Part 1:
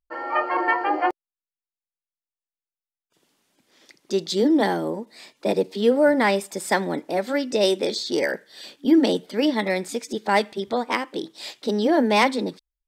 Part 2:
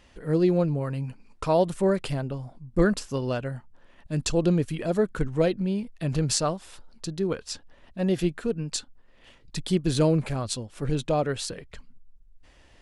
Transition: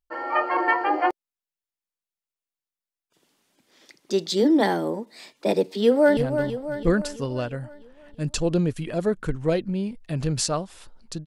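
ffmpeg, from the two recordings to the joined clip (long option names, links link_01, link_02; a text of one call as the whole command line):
ffmpeg -i cue0.wav -i cue1.wav -filter_complex "[0:a]apad=whole_dur=11.26,atrim=end=11.26,atrim=end=6.172[link_01];[1:a]atrim=start=2.088:end=7.18[link_02];[link_01][link_02]acrossfade=duration=0.004:curve1=hsin:curve2=hsin,asplit=2[link_03][link_04];[link_04]afade=type=in:start_time=5.65:duration=0.01,afade=type=out:start_time=6.17:duration=0.01,aecho=0:1:330|660|990|1320|1650|1980|2310:0.398107|0.218959|0.120427|0.0662351|0.0364293|0.0200361|0.0110199[link_05];[link_03][link_05]amix=inputs=2:normalize=0" out.wav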